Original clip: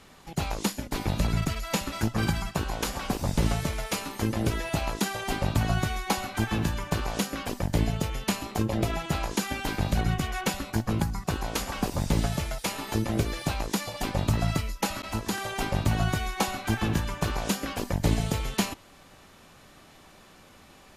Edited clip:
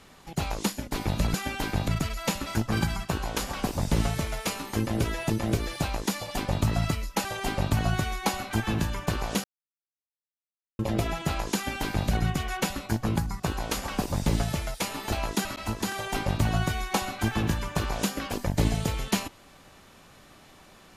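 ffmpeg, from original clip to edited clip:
-filter_complex "[0:a]asplit=9[s0][s1][s2][s3][s4][s5][s6][s7][s8];[s0]atrim=end=1.342[s9];[s1]atrim=start=9.388:end=9.932[s10];[s2]atrim=start=1.338:end=4.762[s11];[s3]atrim=start=12.958:end=14.912[s12];[s4]atrim=start=5.088:end=7.28,asetpts=PTS-STARTPTS,afade=t=out:st=2.188:d=0.004:c=hsin[s13];[s5]atrim=start=7.28:end=8.63,asetpts=PTS-STARTPTS,volume=0[s14];[s6]atrim=start=8.63:end=12.962,asetpts=PTS-STARTPTS,afade=t=in:d=0.004:c=hsin[s15];[s7]atrim=start=4.758:end=5.092[s16];[s8]atrim=start=14.908[s17];[s9][s10]acrossfade=d=0.004:c1=hsin:c2=hsin[s18];[s18][s11]acrossfade=d=0.004:c1=hsin:c2=hsin[s19];[s19][s12]acrossfade=d=0.004:c1=hsin:c2=hsin[s20];[s13][s14][s15]concat=n=3:v=0:a=1[s21];[s20][s21]acrossfade=d=0.004:c1=hsin:c2=hsin[s22];[s22][s16]acrossfade=d=0.004:c1=hsin:c2=hsin[s23];[s23][s17]acrossfade=d=0.004:c1=hsin:c2=hsin"

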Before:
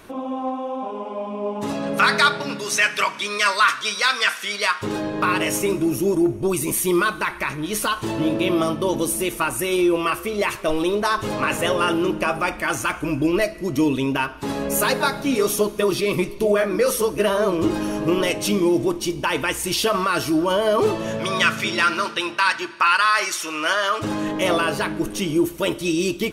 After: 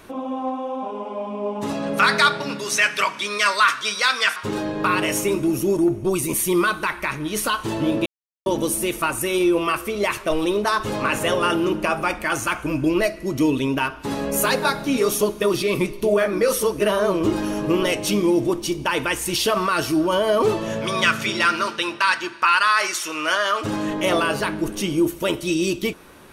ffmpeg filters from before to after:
-filter_complex "[0:a]asplit=4[s0][s1][s2][s3];[s0]atrim=end=4.362[s4];[s1]atrim=start=4.738:end=8.44,asetpts=PTS-STARTPTS,afade=t=out:st=3.698:d=0.004:c=hsin[s5];[s2]atrim=start=8.44:end=8.84,asetpts=PTS-STARTPTS,volume=0[s6];[s3]atrim=start=8.84,asetpts=PTS-STARTPTS,afade=t=in:d=0.004:c=hsin[s7];[s5][s6][s7]concat=n=3:v=0:a=1[s8];[s4][s8]acrossfade=d=0.004:c1=hsin:c2=hsin"

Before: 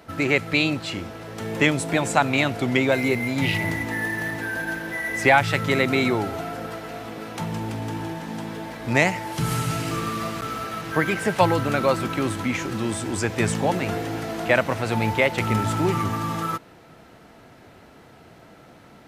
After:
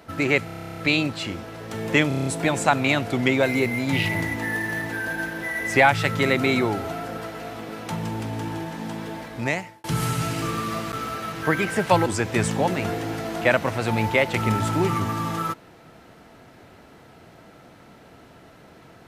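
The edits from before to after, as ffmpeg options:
-filter_complex "[0:a]asplit=20[s0][s1][s2][s3][s4][s5][s6][s7][s8][s9][s10][s11][s12][s13][s14][s15][s16][s17][s18][s19];[s0]atrim=end=0.482[s20];[s1]atrim=start=0.448:end=0.482[s21];[s2]atrim=start=0.448:end=0.482[s22];[s3]atrim=start=0.448:end=0.482[s23];[s4]atrim=start=0.448:end=0.482[s24];[s5]atrim=start=0.448:end=0.482[s25];[s6]atrim=start=0.448:end=0.482[s26];[s7]atrim=start=0.448:end=0.482[s27];[s8]atrim=start=0.448:end=0.482[s28];[s9]atrim=start=0.448:end=0.482[s29];[s10]atrim=start=0.448:end=0.482[s30];[s11]atrim=start=0.448:end=1.782[s31];[s12]atrim=start=1.748:end=1.782[s32];[s13]atrim=start=1.748:end=1.782[s33];[s14]atrim=start=1.748:end=1.782[s34];[s15]atrim=start=1.748:end=1.782[s35];[s16]atrim=start=1.748:end=1.782[s36];[s17]atrim=start=1.748:end=9.33,asetpts=PTS-STARTPTS,afade=t=out:st=6.902:d=0.68[s37];[s18]atrim=start=9.33:end=11.552,asetpts=PTS-STARTPTS,afade=t=in:d=0.004:c=hsin[s38];[s19]atrim=start=13.098[s39];[s20][s21]acrossfade=d=0.004:c1=hsin:c2=hsin[s40];[s40][s22]acrossfade=d=0.004:c1=hsin:c2=hsin[s41];[s41][s23]acrossfade=d=0.004:c1=hsin:c2=hsin[s42];[s42][s24]acrossfade=d=0.004:c1=hsin:c2=hsin[s43];[s43][s25]acrossfade=d=0.004:c1=hsin:c2=hsin[s44];[s44][s26]acrossfade=d=0.004:c1=hsin:c2=hsin[s45];[s45][s27]acrossfade=d=0.004:c1=hsin:c2=hsin[s46];[s46][s28]acrossfade=d=0.004:c1=hsin:c2=hsin[s47];[s47][s29]acrossfade=d=0.004:c1=hsin:c2=hsin[s48];[s48][s30]acrossfade=d=0.004:c1=hsin:c2=hsin[s49];[s49][s31]acrossfade=d=0.004:c1=hsin:c2=hsin[s50];[s50][s32]acrossfade=d=0.004:c1=hsin:c2=hsin[s51];[s51][s33]acrossfade=d=0.004:c1=hsin:c2=hsin[s52];[s52][s34]acrossfade=d=0.004:c1=hsin:c2=hsin[s53];[s53][s35]acrossfade=d=0.004:c1=hsin:c2=hsin[s54];[s54][s36]acrossfade=d=0.004:c1=hsin:c2=hsin[s55];[s37][s38]concat=n=2:v=0:a=1[s56];[s55][s56]acrossfade=d=0.004:c1=hsin:c2=hsin[s57];[s57][s39]acrossfade=d=0.004:c1=hsin:c2=hsin"

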